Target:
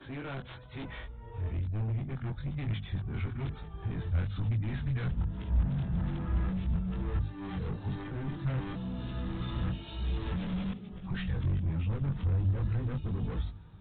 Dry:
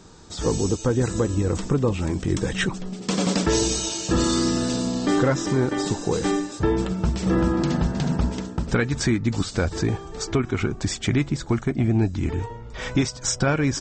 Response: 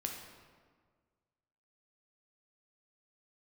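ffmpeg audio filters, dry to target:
-filter_complex "[0:a]areverse,highpass=52,bandreject=f=50:t=h:w=6,bandreject=f=100:t=h:w=6,bandreject=f=150:t=h:w=6,bandreject=f=200:t=h:w=6,bandreject=f=250:t=h:w=6,acrossover=split=280|1700[s0][s1][s2];[s2]aeval=exprs='(mod(7.08*val(0)+1,2)-1)/7.08':c=same[s3];[s0][s1][s3]amix=inputs=3:normalize=0,flanger=delay=19:depth=4.1:speed=1.1,aresample=8000,asoftclip=type=tanh:threshold=0.0398,aresample=44100,asubboost=boost=9:cutoff=120,volume=0.398"

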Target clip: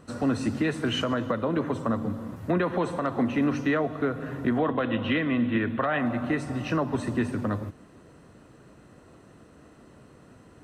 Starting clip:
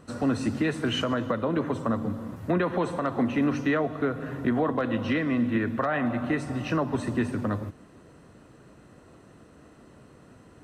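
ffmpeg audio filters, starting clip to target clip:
-filter_complex "[0:a]asettb=1/sr,asplit=3[s0][s1][s2];[s0]atrim=end=4.584[s3];[s1]atrim=start=4.58:end=5.99,asetpts=PTS-STARTPTS,afade=t=in:d=0.004:c=qsin,afade=t=out:st=1.406:d=0.004:c=qsin,highshelf=f=4200:t=q:w=3:g=-7.5[s4];[s2]atrim=start=5.986[s5];[s3][s4]acrossfade=d=0.004:c1=hsin:c2=qsin[s6];[s6][s5]acrossfade=d=0.004:c1=qsin:c2=hsin"

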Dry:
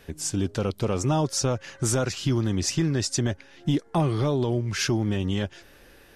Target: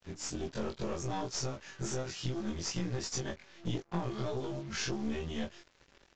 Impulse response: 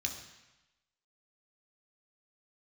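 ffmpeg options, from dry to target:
-filter_complex "[0:a]afftfilt=real='re':imag='-im':win_size=2048:overlap=0.75,acompressor=threshold=0.0355:ratio=6,asplit=2[s0][s1];[s1]adelay=18,volume=0.422[s2];[s0][s2]amix=inputs=2:normalize=0,acrusher=bits=7:mix=0:aa=0.5,aeval=exprs='(tanh(25.1*val(0)+0.8)-tanh(0.8))/25.1':c=same,aresample=16000,aresample=44100,volume=1.19"

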